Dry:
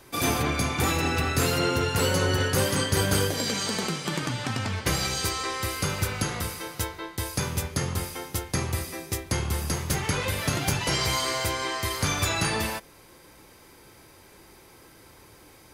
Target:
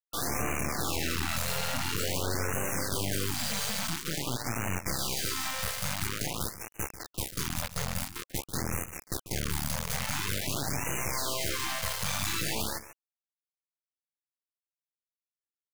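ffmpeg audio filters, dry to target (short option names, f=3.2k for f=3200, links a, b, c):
-filter_complex "[0:a]alimiter=limit=-18.5dB:level=0:latency=1:release=20,aeval=exprs='(tanh(15.8*val(0)+0.55)-tanh(0.55))/15.8':c=same,acrusher=bits=4:mix=0:aa=0.000001,asplit=2[a][b];[b]aecho=0:1:142:0.2[c];[a][c]amix=inputs=2:normalize=0,afftfilt=real='re*(1-between(b*sr/1024,300*pow(4200/300,0.5+0.5*sin(2*PI*0.48*pts/sr))/1.41,300*pow(4200/300,0.5+0.5*sin(2*PI*0.48*pts/sr))*1.41))':imag='im*(1-between(b*sr/1024,300*pow(4200/300,0.5+0.5*sin(2*PI*0.48*pts/sr))/1.41,300*pow(4200/300,0.5+0.5*sin(2*PI*0.48*pts/sr))*1.41))':win_size=1024:overlap=0.75"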